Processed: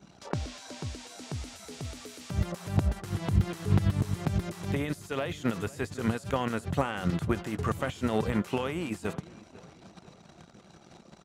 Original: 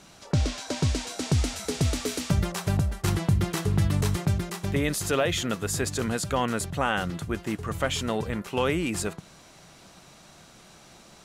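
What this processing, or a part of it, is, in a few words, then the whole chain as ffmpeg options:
de-esser from a sidechain: -filter_complex "[0:a]anlmdn=0.01,asplit=2[s0][s1];[s1]highpass=5200,apad=whole_len=495918[s2];[s0][s2]sidechaincompress=threshold=0.00178:ratio=16:attack=2.4:release=23,highpass=70,asplit=2[s3][s4];[s4]adelay=499,lowpass=f=3500:p=1,volume=0.1,asplit=2[s5][s6];[s6]adelay=499,lowpass=f=3500:p=1,volume=0.5,asplit=2[s7][s8];[s8]adelay=499,lowpass=f=3500:p=1,volume=0.5,asplit=2[s9][s10];[s10]adelay=499,lowpass=f=3500:p=1,volume=0.5[s11];[s3][s5][s7][s9][s11]amix=inputs=5:normalize=0,volume=1.88"

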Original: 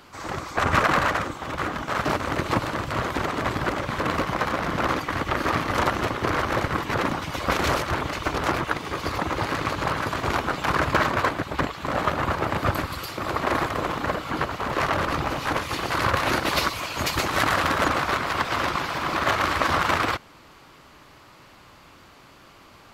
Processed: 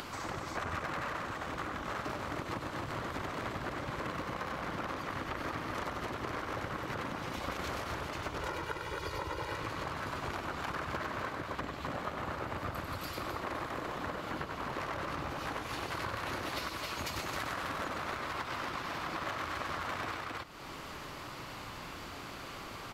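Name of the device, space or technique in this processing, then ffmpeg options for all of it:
upward and downward compression: -filter_complex "[0:a]asettb=1/sr,asplit=3[s0][s1][s2];[s0]atrim=end=8.404[s3];[s1]atrim=start=8.4:end=9.57,asetpts=PTS-STARTPTS,afade=t=in:d=0.004:c=qsin,afade=t=out:st=1.166:d=0.004:c=qsin,aecho=1:1:2.1:0.74,atrim=end_sample=51597[s4];[s2]atrim=start=9.566[s5];[s3][s4]acrossfade=d=0.004:c1=hsin:c2=qsin[s6];[s6][s5]acrossfade=d=0.004:c1=qsin:c2=hsin,aecho=1:1:96.21|265.3:0.501|0.447,acompressor=mode=upward:threshold=0.0282:ratio=2.5,acompressor=threshold=0.0251:ratio=5,volume=0.631"

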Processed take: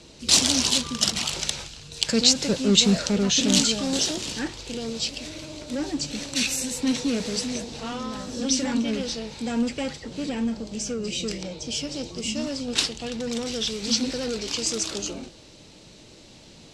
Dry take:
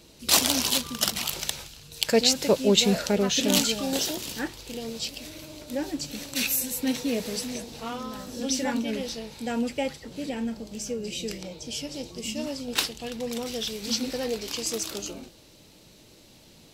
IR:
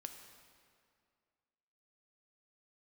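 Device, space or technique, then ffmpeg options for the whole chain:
one-band saturation: -filter_complex "[0:a]acrossover=split=300|3000[s0][s1][s2];[s1]asoftclip=type=tanh:threshold=0.0168[s3];[s0][s3][s2]amix=inputs=3:normalize=0,lowpass=f=8300:w=0.5412,lowpass=f=8300:w=1.3066,volume=1.78"

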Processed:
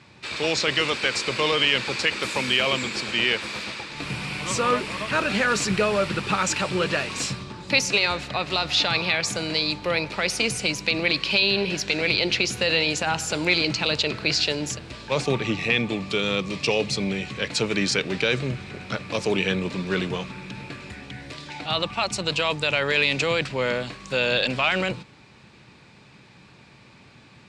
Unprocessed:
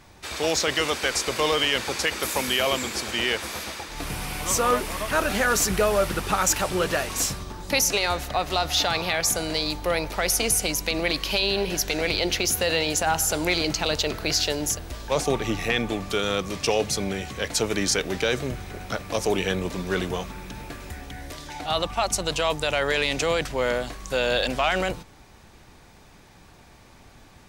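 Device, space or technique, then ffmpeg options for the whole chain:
car door speaker: -filter_complex "[0:a]asettb=1/sr,asplit=3[s0][s1][s2];[s0]atrim=end=15.534[s3];[s1]atrim=start=15.53:end=17.23,asetpts=PTS-STARTPTS,afade=t=in:d=0.004:c=qsin,afade=t=out:st=1.696:d=0.004:c=qsin,equalizer=f=1500:w=3.7:g=-5.5[s4];[s2]atrim=start=17.226[s5];[s3][s4]acrossfade=d=0.004:c1=hsin:c2=qsin[s6];[s6][s5]acrossfade=d=0.004:c1=qsin:c2=hsin,highpass=110,equalizer=f=130:t=q:w=4:g=8,equalizer=f=200:t=q:w=4:g=4,equalizer=f=720:t=q:w=4:g=-6,equalizer=f=2500:t=q:w=4:g=7,equalizer=f=4200:t=q:w=4:g=4,equalizer=f=6200:t=q:w=4:g=-7,lowpass=f=7600:w=0.5412,lowpass=f=7600:w=1.3066"

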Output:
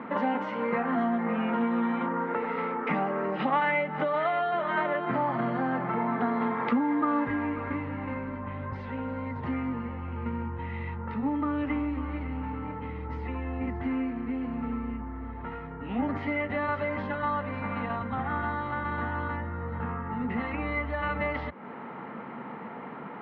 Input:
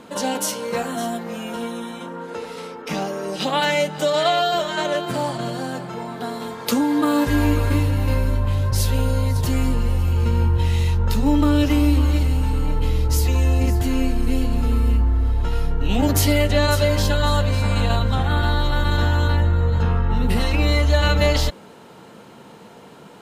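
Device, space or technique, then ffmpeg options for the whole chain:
bass amplifier: -af "acompressor=threshold=0.0398:ratio=6,highpass=f=79:w=0.5412,highpass=f=79:w=1.3066,equalizer=f=93:t=q:w=4:g=-8,equalizer=f=240:t=q:w=4:g=8,equalizer=f=830:t=q:w=4:g=6,equalizer=f=1200:t=q:w=4:g=9,equalizer=f=2000:t=q:w=4:g=10,lowpass=f=2300:w=0.5412,lowpass=f=2300:w=1.3066"

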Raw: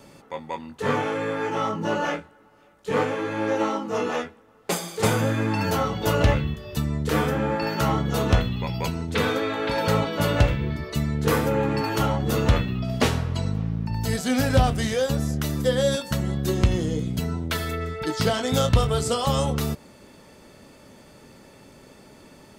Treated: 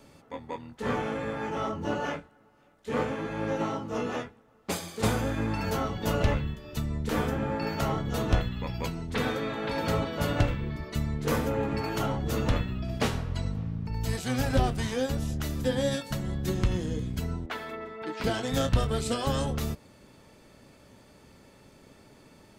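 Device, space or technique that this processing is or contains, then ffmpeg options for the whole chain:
octave pedal: -filter_complex "[0:a]asplit=2[s0][s1];[s1]asetrate=22050,aresample=44100,atempo=2,volume=0.631[s2];[s0][s2]amix=inputs=2:normalize=0,asettb=1/sr,asplit=3[s3][s4][s5];[s3]atrim=end=17.464[s6];[s4]atrim=start=17.46:end=18.24,asetpts=PTS-STARTPTS,afade=t=in:d=0.004:c=qsin,afade=t=out:st=0.776:d=0.004:c=qsin,acrossover=split=230 3400:gain=0.0794 1 0.2[s7][s8][s9];[s7][s8][s9]amix=inputs=3:normalize=0[s10];[s5]atrim=start=18.236[s11];[s6][s10]acrossfade=d=0.004:c1=hsin:c2=qsin[s12];[s12][s11]acrossfade=d=0.004:c1=qsin:c2=hsin,volume=0.447"

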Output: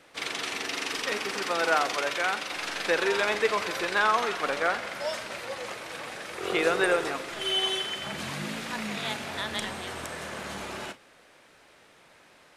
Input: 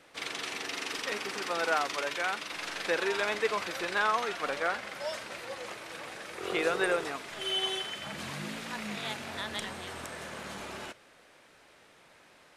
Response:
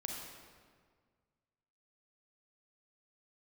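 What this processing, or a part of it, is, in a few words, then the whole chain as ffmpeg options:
keyed gated reverb: -filter_complex "[0:a]asplit=3[s0][s1][s2];[1:a]atrim=start_sample=2205[s3];[s1][s3]afir=irnorm=-1:irlink=0[s4];[s2]apad=whole_len=554084[s5];[s4][s5]sidechaingate=range=0.0224:threshold=0.00562:ratio=16:detection=peak,volume=0.398[s6];[s0][s6]amix=inputs=2:normalize=0,volume=1.26"

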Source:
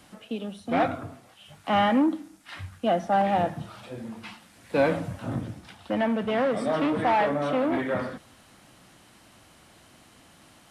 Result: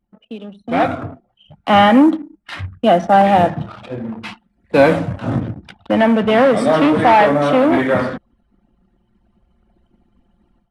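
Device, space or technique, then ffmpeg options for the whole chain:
voice memo with heavy noise removal: -af "anlmdn=0.1,dynaudnorm=f=530:g=3:m=6.68"

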